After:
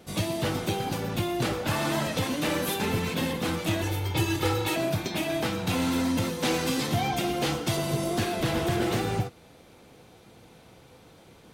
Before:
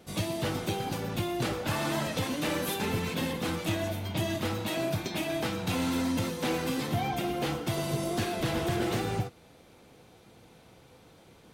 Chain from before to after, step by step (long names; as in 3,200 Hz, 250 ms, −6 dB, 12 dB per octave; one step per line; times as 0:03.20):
0:03.81–0:04.76: comb filter 2.3 ms, depth 96%
0:06.43–0:07.77: parametric band 6,100 Hz +5.5 dB 1.9 octaves
level +3 dB